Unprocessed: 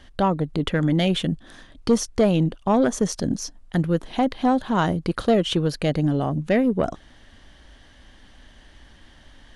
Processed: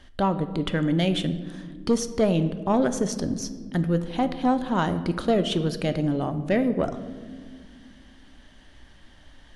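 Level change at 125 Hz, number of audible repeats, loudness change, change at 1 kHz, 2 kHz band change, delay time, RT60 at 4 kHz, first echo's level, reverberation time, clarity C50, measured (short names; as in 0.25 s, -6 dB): -3.0 dB, none, -2.5 dB, -2.5 dB, -2.5 dB, none, 0.90 s, none, 1.8 s, 12.5 dB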